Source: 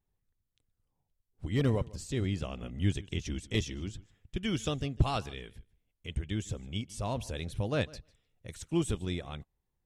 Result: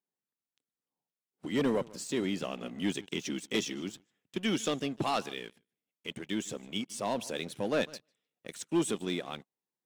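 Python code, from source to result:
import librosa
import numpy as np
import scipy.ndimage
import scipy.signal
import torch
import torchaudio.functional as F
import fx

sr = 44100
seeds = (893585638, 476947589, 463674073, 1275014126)

y = scipy.signal.sosfilt(scipy.signal.butter(4, 200.0, 'highpass', fs=sr, output='sos'), x)
y = fx.leveller(y, sr, passes=2)
y = F.gain(torch.from_numpy(y), -3.0).numpy()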